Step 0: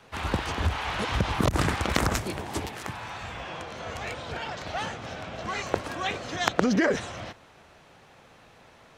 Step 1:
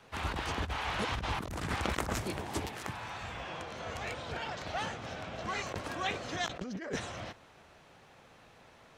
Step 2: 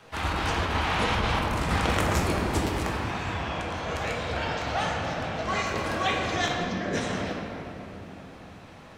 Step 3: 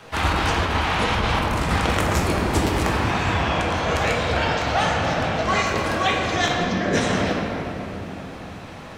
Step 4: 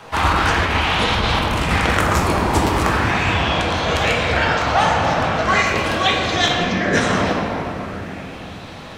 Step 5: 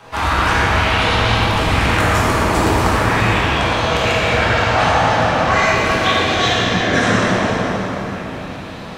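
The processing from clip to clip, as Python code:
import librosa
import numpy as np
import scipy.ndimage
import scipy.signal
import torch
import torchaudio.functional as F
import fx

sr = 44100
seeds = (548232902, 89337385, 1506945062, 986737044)

y1 = fx.over_compress(x, sr, threshold_db=-27.0, ratio=-0.5)
y1 = y1 * 10.0 ** (-6.0 / 20.0)
y2 = fx.room_shoebox(y1, sr, seeds[0], volume_m3=190.0, walls='hard', distance_m=0.58)
y2 = y2 * 10.0 ** (5.0 / 20.0)
y3 = fx.rider(y2, sr, range_db=3, speed_s=0.5)
y3 = y3 * 10.0 ** (6.5 / 20.0)
y4 = fx.bell_lfo(y3, sr, hz=0.4, low_hz=920.0, high_hz=3900.0, db=6)
y4 = y4 * 10.0 ** (2.5 / 20.0)
y5 = fx.rev_plate(y4, sr, seeds[1], rt60_s=3.2, hf_ratio=0.85, predelay_ms=0, drr_db=-4.5)
y5 = y5 * 10.0 ** (-3.5 / 20.0)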